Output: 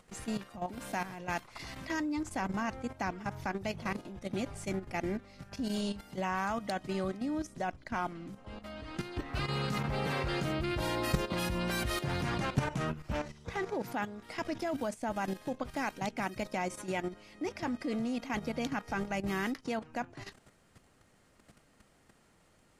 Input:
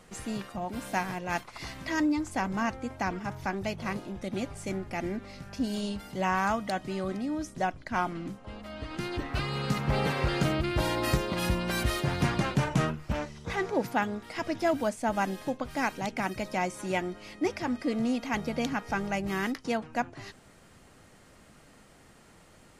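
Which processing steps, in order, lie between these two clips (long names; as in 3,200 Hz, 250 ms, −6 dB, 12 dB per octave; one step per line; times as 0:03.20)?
output level in coarse steps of 11 dB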